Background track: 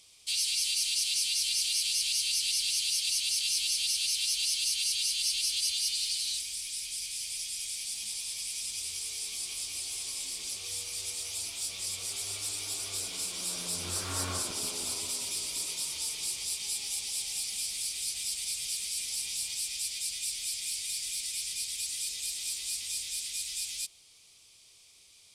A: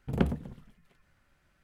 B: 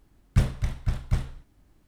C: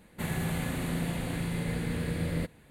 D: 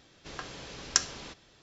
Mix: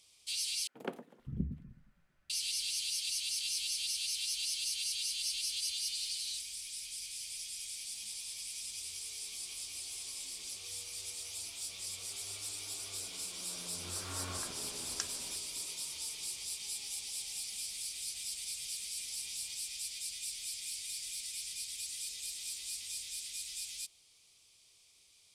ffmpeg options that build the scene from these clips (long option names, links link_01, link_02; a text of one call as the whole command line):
ffmpeg -i bed.wav -i cue0.wav -i cue1.wav -i cue2.wav -i cue3.wav -filter_complex "[0:a]volume=-6.5dB[link_01];[1:a]acrossover=split=280[link_02][link_03];[link_02]adelay=520[link_04];[link_04][link_03]amix=inputs=2:normalize=0[link_05];[4:a]alimiter=limit=-6.5dB:level=0:latency=1:release=391[link_06];[link_01]asplit=2[link_07][link_08];[link_07]atrim=end=0.674[link_09];[link_05]atrim=end=1.63,asetpts=PTS-STARTPTS,volume=-7dB[link_10];[link_08]atrim=start=2.296[link_11];[link_06]atrim=end=1.62,asetpts=PTS-STARTPTS,volume=-10.5dB,afade=type=in:duration=0.004:curve=hsin,afade=type=out:start_time=1.616:duration=0.004:curve=hsin,adelay=14040[link_12];[link_09][link_10]acrossfade=duration=0.004:curve1=hsin:curve2=hsin[link_13];[link_13][link_11]acrossfade=duration=0.004:curve1=hsin:curve2=hsin[link_14];[link_14][link_12]amix=inputs=2:normalize=0" out.wav